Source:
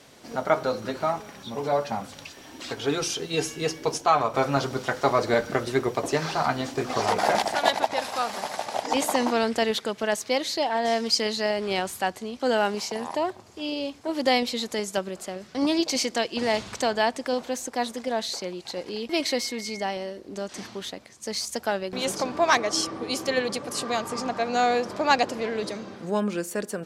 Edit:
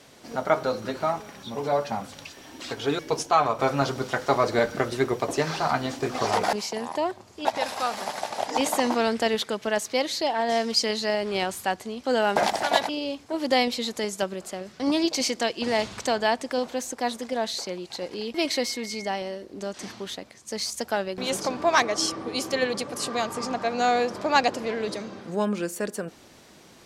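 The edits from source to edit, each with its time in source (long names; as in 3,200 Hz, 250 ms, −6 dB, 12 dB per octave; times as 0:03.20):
0:02.99–0:03.74: remove
0:07.28–0:07.81: swap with 0:12.72–0:13.64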